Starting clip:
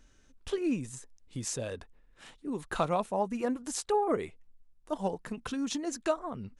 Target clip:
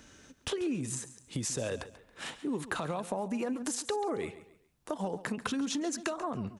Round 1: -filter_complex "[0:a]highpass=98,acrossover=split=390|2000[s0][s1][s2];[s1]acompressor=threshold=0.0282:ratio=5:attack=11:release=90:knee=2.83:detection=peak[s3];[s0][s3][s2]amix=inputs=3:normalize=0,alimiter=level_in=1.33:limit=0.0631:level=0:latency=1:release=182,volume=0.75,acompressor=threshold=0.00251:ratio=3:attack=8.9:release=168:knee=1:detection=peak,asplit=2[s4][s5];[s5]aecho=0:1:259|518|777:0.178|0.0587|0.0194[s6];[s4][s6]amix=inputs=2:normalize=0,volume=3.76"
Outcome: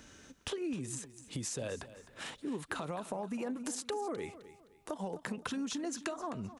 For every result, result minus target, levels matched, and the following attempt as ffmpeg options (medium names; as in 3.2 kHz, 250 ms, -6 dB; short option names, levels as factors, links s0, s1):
echo 121 ms late; compression: peak gain reduction +4.5 dB
-filter_complex "[0:a]highpass=98,acrossover=split=390|2000[s0][s1][s2];[s1]acompressor=threshold=0.0282:ratio=5:attack=11:release=90:knee=2.83:detection=peak[s3];[s0][s3][s2]amix=inputs=3:normalize=0,alimiter=level_in=1.33:limit=0.0631:level=0:latency=1:release=182,volume=0.75,acompressor=threshold=0.00251:ratio=3:attack=8.9:release=168:knee=1:detection=peak,asplit=2[s4][s5];[s5]aecho=0:1:138|276|414:0.178|0.0587|0.0194[s6];[s4][s6]amix=inputs=2:normalize=0,volume=3.76"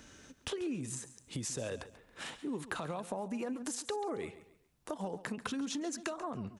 compression: peak gain reduction +4.5 dB
-filter_complex "[0:a]highpass=98,acrossover=split=390|2000[s0][s1][s2];[s1]acompressor=threshold=0.0282:ratio=5:attack=11:release=90:knee=2.83:detection=peak[s3];[s0][s3][s2]amix=inputs=3:normalize=0,alimiter=level_in=1.33:limit=0.0631:level=0:latency=1:release=182,volume=0.75,acompressor=threshold=0.00531:ratio=3:attack=8.9:release=168:knee=1:detection=peak,asplit=2[s4][s5];[s5]aecho=0:1:138|276|414:0.178|0.0587|0.0194[s6];[s4][s6]amix=inputs=2:normalize=0,volume=3.76"